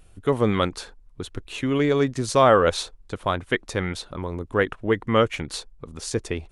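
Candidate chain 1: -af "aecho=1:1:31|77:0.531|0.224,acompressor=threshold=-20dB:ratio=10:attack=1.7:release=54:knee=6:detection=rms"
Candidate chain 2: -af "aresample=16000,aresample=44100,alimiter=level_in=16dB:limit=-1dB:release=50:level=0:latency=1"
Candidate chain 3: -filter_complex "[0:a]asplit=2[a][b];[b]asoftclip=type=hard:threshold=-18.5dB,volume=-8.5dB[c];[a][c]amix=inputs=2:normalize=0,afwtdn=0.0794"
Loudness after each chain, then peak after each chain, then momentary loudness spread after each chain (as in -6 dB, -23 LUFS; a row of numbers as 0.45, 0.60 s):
-28.5, -13.5, -22.0 LUFS; -15.0, -1.0, -4.0 dBFS; 10, 11, 19 LU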